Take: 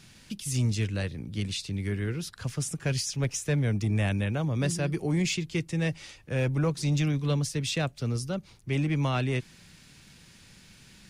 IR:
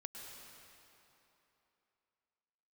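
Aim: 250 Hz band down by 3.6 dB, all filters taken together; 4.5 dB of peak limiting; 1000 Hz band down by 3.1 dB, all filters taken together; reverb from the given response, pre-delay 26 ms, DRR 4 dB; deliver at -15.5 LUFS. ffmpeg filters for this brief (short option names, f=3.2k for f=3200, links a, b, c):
-filter_complex "[0:a]equalizer=f=250:t=o:g=-6,equalizer=f=1k:t=o:g=-4,alimiter=limit=-23dB:level=0:latency=1,asplit=2[a][b];[1:a]atrim=start_sample=2205,adelay=26[c];[b][c]afir=irnorm=-1:irlink=0,volume=-1dB[d];[a][d]amix=inputs=2:normalize=0,volume=15.5dB"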